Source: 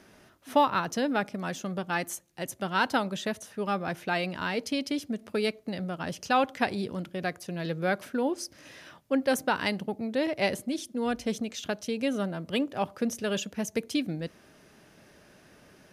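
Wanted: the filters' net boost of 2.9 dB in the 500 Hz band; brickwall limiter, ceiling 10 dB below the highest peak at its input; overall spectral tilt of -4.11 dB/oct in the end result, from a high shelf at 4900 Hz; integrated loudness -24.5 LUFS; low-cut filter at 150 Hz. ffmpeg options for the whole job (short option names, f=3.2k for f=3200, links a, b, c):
-af "highpass=150,equalizer=f=500:t=o:g=3.5,highshelf=f=4.9k:g=-5.5,volume=7.5dB,alimiter=limit=-11.5dB:level=0:latency=1"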